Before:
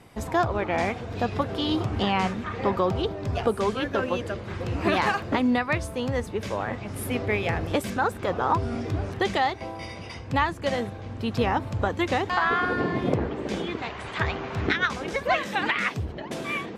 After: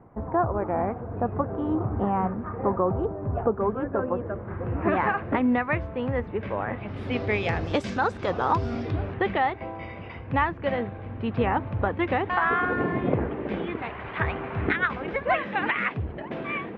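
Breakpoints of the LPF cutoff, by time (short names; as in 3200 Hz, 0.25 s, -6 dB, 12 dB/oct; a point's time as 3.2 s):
LPF 24 dB/oct
4.13 s 1300 Hz
5.42 s 2400 Hz
6.68 s 2400 Hz
7.37 s 6200 Hz
8.68 s 6200 Hz
9.19 s 2600 Hz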